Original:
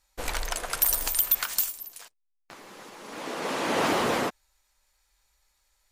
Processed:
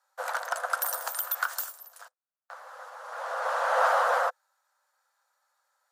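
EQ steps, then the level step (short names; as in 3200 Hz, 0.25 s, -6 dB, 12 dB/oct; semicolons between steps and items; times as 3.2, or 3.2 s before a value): rippled Chebyshev high-pass 500 Hz, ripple 3 dB; resonant high shelf 1800 Hz -8 dB, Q 3; +3.0 dB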